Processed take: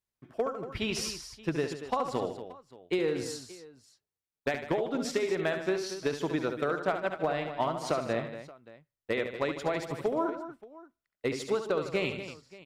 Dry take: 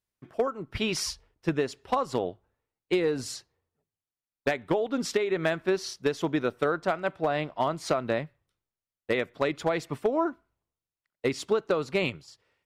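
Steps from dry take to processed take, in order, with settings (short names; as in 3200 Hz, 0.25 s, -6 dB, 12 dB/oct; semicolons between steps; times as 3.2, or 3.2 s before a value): 6.73–7.66 transient shaper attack +2 dB, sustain -3 dB; tapped delay 70/78/152/235/577 ms -8.5/-19/-13.5/-11.5/-20 dB; gain -4 dB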